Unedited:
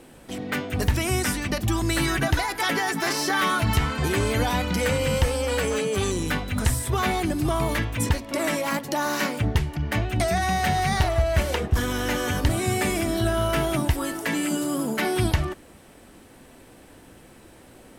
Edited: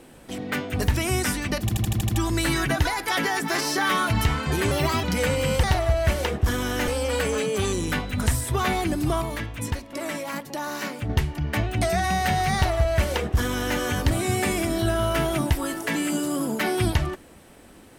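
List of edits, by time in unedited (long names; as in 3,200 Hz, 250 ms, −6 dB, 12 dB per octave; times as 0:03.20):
0:01.61: stutter 0.08 s, 7 plays
0:04.23–0:04.66: play speed 132%
0:07.60–0:09.48: clip gain −5.5 dB
0:10.93–0:12.17: duplicate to 0:05.26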